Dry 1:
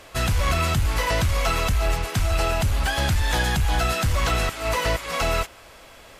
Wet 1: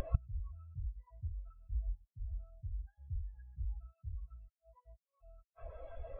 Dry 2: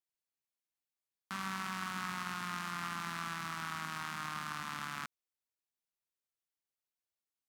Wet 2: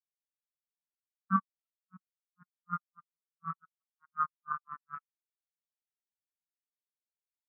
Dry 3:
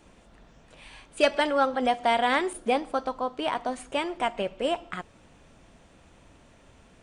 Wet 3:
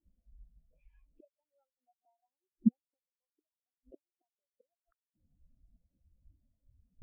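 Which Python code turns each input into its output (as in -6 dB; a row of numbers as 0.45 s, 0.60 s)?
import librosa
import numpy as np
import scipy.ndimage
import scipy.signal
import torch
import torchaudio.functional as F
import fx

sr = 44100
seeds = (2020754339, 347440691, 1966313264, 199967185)

p1 = scipy.signal.medfilt(x, 5)
p2 = fx.gate_flip(p1, sr, shuts_db=-26.0, range_db=-37)
p3 = fx.over_compress(p2, sr, threshold_db=-53.0, ratio=-1.0)
p4 = p2 + F.gain(torch.from_numpy(p3), 0.0).numpy()
p5 = fx.spectral_expand(p4, sr, expansion=4.0)
y = F.gain(torch.from_numpy(p5), 9.0).numpy()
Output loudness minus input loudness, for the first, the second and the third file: -23.0 LU, +2.0 LU, -5.5 LU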